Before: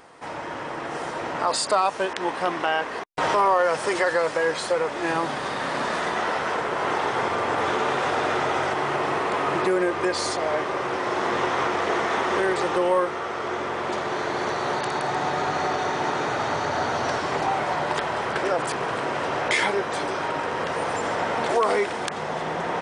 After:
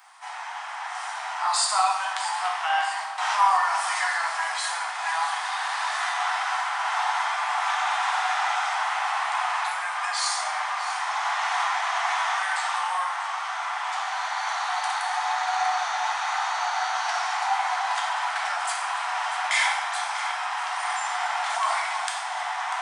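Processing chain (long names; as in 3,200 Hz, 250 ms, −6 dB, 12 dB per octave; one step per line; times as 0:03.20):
Butterworth high-pass 720 Hz 72 dB per octave
high-shelf EQ 5,200 Hz +6.5 dB
delay that swaps between a low-pass and a high-pass 321 ms, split 1,200 Hz, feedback 76%, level −10.5 dB
dense smooth reverb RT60 0.95 s, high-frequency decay 0.85×, DRR −1.5 dB
level −4 dB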